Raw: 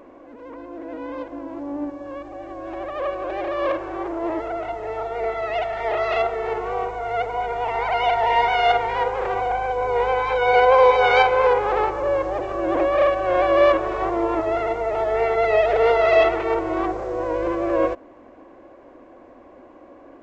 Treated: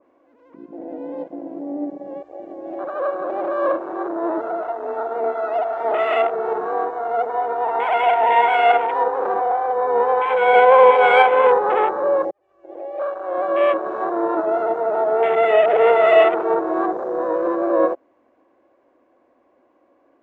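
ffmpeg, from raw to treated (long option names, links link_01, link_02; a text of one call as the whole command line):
ffmpeg -i in.wav -filter_complex "[0:a]asplit=2[link_01][link_02];[link_01]atrim=end=12.31,asetpts=PTS-STARTPTS,afade=type=out:start_time=12.306:duration=0.004:curve=hsin[link_03];[link_02]atrim=start=12.31,asetpts=PTS-STARTPTS,afade=type=in:duration=2.34[link_04];[link_03][link_04]concat=n=2:v=0:a=1,highpass=frequency=230:poles=1,afwtdn=0.0501,adynamicequalizer=threshold=0.0316:dfrequency=2000:dqfactor=0.7:tfrequency=2000:tqfactor=0.7:attack=5:release=100:ratio=0.375:range=1.5:mode=cutabove:tftype=highshelf,volume=4dB" out.wav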